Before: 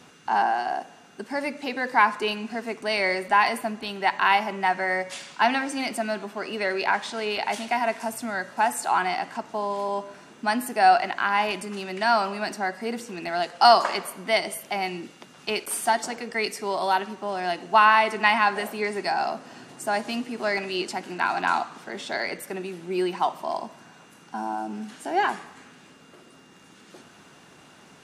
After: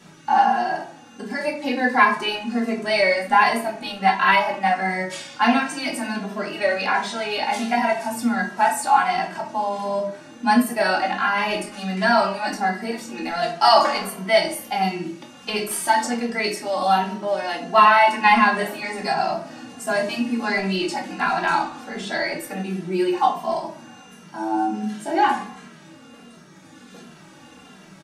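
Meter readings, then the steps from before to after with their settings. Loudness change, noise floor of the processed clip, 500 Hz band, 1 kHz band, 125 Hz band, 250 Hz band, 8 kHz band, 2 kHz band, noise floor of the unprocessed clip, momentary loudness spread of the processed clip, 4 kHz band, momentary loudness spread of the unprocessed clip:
+4.0 dB, -46 dBFS, +4.0 dB, +3.5 dB, +8.5 dB, +7.5 dB, +3.0 dB, +3.5 dB, -52 dBFS, 12 LU, +3.0 dB, 13 LU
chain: shoebox room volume 280 m³, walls furnished, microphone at 2.3 m; endless flanger 2.6 ms -1.4 Hz; gain +3 dB

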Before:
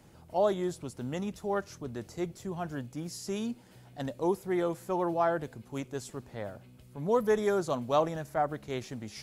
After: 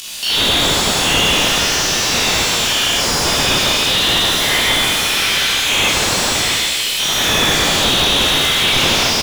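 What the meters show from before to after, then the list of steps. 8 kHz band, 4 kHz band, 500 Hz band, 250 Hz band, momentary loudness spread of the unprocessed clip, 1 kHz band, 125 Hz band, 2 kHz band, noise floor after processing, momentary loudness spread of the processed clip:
+32.5 dB, +38.5 dB, +7.0 dB, +10.0 dB, 13 LU, +14.0 dB, +13.5 dB, +28.0 dB, -19 dBFS, 2 LU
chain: spectral dilation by 0.24 s; steep high-pass 2900 Hz 36 dB/oct; gate with hold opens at -51 dBFS; high shelf 3700 Hz -9 dB; upward compressor, threshold -57 dBFS; crackle 400/s -64 dBFS; doubler 18 ms -2.5 dB; Schroeder reverb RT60 1.8 s, combs from 27 ms, DRR -6 dB; maximiser +31 dB; slew limiter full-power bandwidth 340 Hz; gain +6.5 dB

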